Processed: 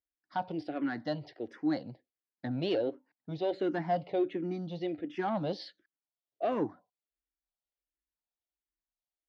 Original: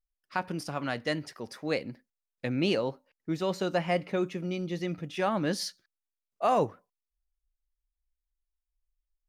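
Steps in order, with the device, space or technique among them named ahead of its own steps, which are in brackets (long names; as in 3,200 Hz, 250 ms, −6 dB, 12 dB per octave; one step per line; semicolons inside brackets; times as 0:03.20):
barber-pole phaser into a guitar amplifier (frequency shifter mixed with the dry sound −1.4 Hz; soft clipping −25.5 dBFS, distortion −17 dB; loudspeaker in its box 100–4,100 Hz, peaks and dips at 180 Hz −3 dB, 310 Hz +10 dB, 720 Hz +7 dB, 1,200 Hz −8 dB, 2,500 Hz −7 dB)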